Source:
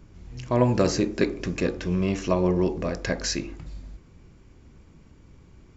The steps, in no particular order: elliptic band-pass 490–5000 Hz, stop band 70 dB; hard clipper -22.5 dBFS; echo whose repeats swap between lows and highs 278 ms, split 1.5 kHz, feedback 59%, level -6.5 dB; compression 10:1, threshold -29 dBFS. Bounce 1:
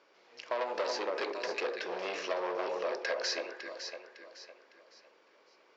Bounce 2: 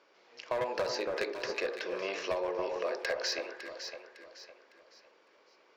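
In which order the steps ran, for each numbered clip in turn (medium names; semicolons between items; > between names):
echo whose repeats swap between lows and highs > hard clipper > elliptic band-pass > compression; elliptic band-pass > hard clipper > echo whose repeats swap between lows and highs > compression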